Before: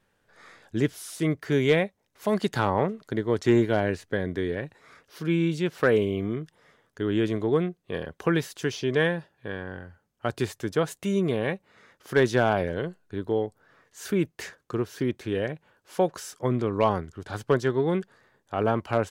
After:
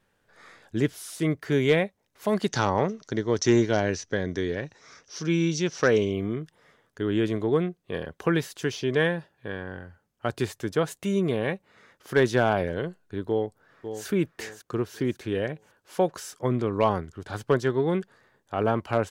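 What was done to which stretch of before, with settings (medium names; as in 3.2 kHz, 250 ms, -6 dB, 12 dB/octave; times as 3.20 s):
2.49–6.13 s: resonant low-pass 5.9 kHz, resonance Q 9.7
13.28–14.06 s: echo throw 550 ms, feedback 35%, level -9.5 dB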